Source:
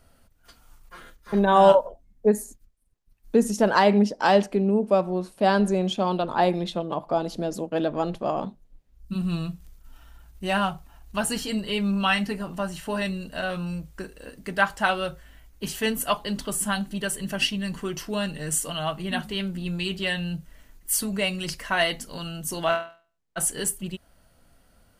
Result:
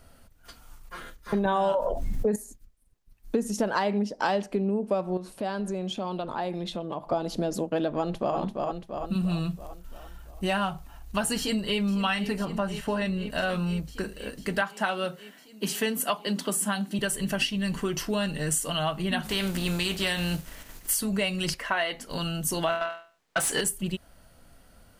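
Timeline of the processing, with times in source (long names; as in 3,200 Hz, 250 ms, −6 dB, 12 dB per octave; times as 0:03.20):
0:01.45–0:02.36: envelope flattener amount 70%
0:05.17–0:07.12: downward compressor 2.5 to 1, threshold −37 dBFS
0:07.97–0:08.37: delay throw 340 ms, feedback 55%, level −7 dB
0:11.37–0:11.80: delay throw 500 ms, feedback 80%, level −12.5 dB
0:12.45–0:13.30: high-shelf EQ 3,900 Hz −8.5 dB
0:14.61–0:16.99: elliptic high-pass filter 170 Hz
0:19.24–0:20.93: compressing power law on the bin magnitudes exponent 0.68
0:21.54–0:22.10: bass and treble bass −11 dB, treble −9 dB
0:22.81–0:23.61: mid-hump overdrive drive 20 dB, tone 4,000 Hz, clips at −13 dBFS
whole clip: downward compressor 5 to 1, threshold −28 dBFS; level +4 dB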